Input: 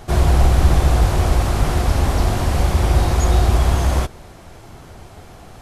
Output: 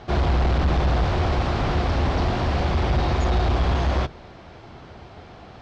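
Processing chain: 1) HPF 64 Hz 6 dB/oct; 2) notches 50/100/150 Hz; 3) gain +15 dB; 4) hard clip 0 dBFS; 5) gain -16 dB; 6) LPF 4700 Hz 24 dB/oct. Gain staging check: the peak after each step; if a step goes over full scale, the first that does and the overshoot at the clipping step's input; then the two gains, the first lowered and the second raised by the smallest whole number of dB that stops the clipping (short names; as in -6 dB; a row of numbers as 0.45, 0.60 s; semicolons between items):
-5.0, -5.0, +10.0, 0.0, -16.0, -15.5 dBFS; step 3, 10.0 dB; step 3 +5 dB, step 5 -6 dB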